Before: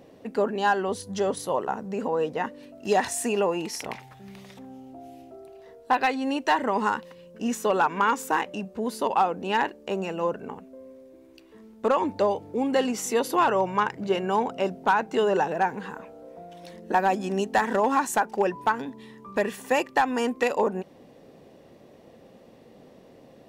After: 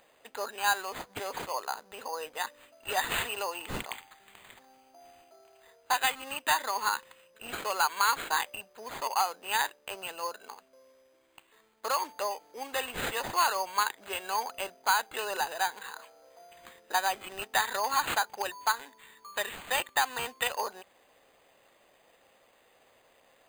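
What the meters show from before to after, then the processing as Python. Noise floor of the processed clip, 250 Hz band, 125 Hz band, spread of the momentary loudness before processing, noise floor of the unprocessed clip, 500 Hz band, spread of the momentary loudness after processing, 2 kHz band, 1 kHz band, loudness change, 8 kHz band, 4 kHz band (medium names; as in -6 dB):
-65 dBFS, -20.5 dB, -13.5 dB, 19 LU, -52 dBFS, -13.5 dB, 12 LU, -1.5 dB, -5.5 dB, -5.5 dB, +0.5 dB, +3.5 dB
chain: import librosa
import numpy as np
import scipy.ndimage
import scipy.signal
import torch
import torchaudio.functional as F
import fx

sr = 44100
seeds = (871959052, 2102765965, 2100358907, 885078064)

y = scipy.signal.sosfilt(scipy.signal.butter(2, 1100.0, 'highpass', fs=sr, output='sos'), x)
y = np.repeat(y[::8], 8)[:len(y)]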